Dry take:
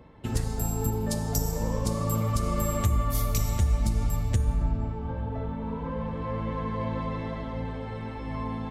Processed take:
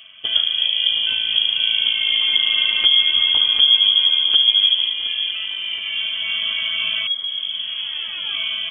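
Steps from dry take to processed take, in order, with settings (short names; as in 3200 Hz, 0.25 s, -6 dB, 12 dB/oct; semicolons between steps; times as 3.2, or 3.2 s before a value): 0.89–1.64 added noise blue -43 dBFS; 5.31–5.93 HPF 110 Hz; 7.07 tape start 1.31 s; thin delay 0.721 s, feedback 71%, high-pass 1800 Hz, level -10 dB; inverted band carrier 3300 Hz; gain +7.5 dB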